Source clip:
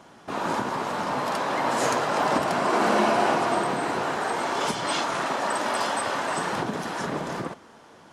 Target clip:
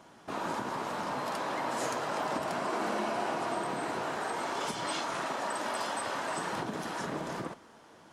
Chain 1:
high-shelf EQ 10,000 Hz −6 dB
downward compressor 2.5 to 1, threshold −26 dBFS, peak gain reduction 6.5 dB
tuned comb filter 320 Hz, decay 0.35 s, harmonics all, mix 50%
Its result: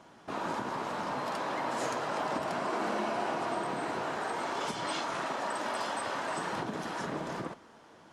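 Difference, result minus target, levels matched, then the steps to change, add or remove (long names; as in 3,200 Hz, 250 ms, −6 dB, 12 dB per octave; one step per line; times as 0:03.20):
8,000 Hz band −3.0 dB
change: high-shelf EQ 10,000 Hz +4 dB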